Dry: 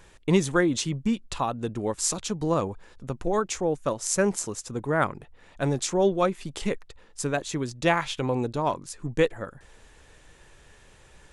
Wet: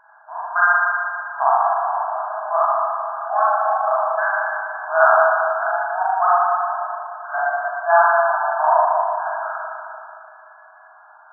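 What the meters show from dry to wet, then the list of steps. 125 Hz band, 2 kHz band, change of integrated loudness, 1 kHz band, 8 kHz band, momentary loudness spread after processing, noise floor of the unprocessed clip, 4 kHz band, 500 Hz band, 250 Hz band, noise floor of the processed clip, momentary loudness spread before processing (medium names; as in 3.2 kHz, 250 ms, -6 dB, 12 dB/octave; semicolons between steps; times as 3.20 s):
under -40 dB, +13.5 dB, +8.0 dB, +15.5 dB, under -40 dB, 12 LU, -55 dBFS, under -40 dB, +5.5 dB, under -40 dB, -47 dBFS, 10 LU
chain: spring tank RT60 2.6 s, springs 37/59 ms, chirp 70 ms, DRR -10 dB; FFT band-pass 620–1700 Hz; trim +5.5 dB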